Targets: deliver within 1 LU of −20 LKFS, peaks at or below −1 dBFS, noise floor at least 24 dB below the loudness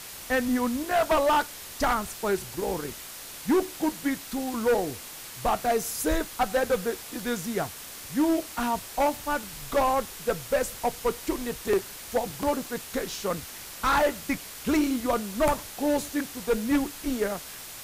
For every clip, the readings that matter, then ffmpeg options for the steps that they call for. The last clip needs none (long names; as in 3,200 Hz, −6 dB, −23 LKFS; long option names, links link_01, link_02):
background noise floor −42 dBFS; target noise floor −52 dBFS; integrated loudness −28.0 LKFS; sample peak −16.5 dBFS; target loudness −20.0 LKFS
→ -af "afftdn=noise_reduction=10:noise_floor=-42"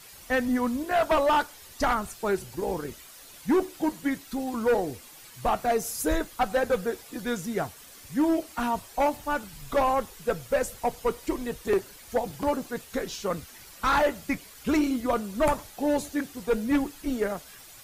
background noise floor −49 dBFS; target noise floor −52 dBFS
→ -af "afftdn=noise_reduction=6:noise_floor=-49"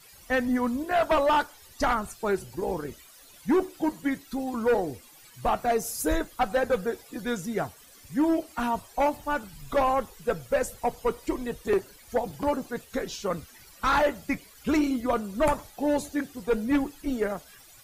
background noise floor −53 dBFS; integrated loudness −28.0 LKFS; sample peak −17.0 dBFS; target loudness −20.0 LKFS
→ -af "volume=8dB"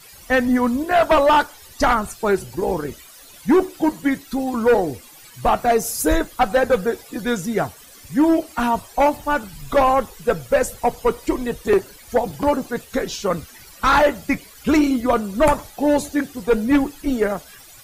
integrated loudness −20.0 LKFS; sample peak −9.0 dBFS; background noise floor −45 dBFS